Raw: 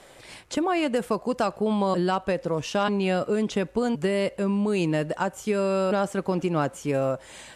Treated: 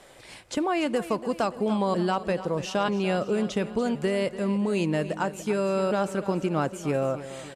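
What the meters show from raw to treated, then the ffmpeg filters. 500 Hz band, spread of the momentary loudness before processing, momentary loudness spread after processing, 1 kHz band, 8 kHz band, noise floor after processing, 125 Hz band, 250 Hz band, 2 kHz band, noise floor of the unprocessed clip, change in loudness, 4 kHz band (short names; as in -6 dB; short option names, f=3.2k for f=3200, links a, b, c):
-1.5 dB, 4 LU, 4 LU, -1.0 dB, -1.5 dB, -48 dBFS, -1.0 dB, -1.0 dB, -1.5 dB, -49 dBFS, -1.5 dB, -1.0 dB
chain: -af "aecho=1:1:289|578|867|1156|1445|1734:0.2|0.11|0.0604|0.0332|0.0183|0.01,volume=-1.5dB"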